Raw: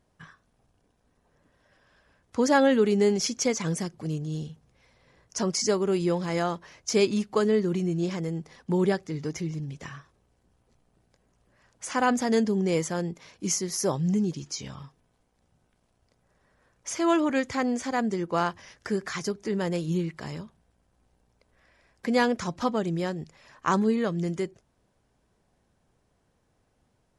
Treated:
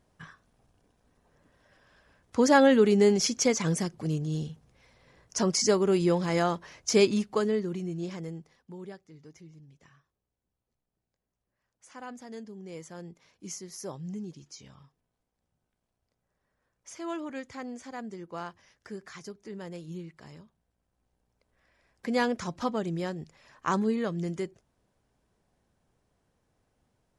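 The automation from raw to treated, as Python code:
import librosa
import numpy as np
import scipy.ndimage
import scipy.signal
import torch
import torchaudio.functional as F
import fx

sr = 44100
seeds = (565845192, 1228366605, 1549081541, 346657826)

y = fx.gain(x, sr, db=fx.line((7.01, 1.0), (7.75, -7.0), (8.3, -7.0), (8.75, -19.0), (12.57, -19.0), (13.09, -12.5), (20.42, -12.5), (22.23, -3.5)))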